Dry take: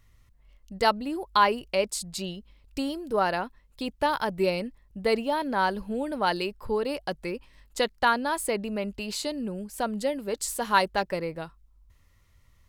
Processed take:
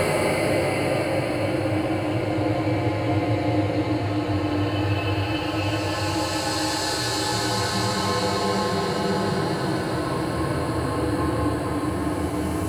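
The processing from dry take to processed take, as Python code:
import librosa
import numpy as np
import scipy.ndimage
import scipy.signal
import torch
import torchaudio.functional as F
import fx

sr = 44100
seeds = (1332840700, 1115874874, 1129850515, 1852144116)

y = x * np.sin(2.0 * np.pi * 100.0 * np.arange(len(x)) / sr)
y = fx.echo_diffused(y, sr, ms=1157, feedback_pct=69, wet_db=-12.0)
y = fx.room_shoebox(y, sr, seeds[0], volume_m3=740.0, walls='mixed', distance_m=4.2)
y = fx.paulstretch(y, sr, seeds[1], factor=11.0, window_s=0.25, from_s=8.56)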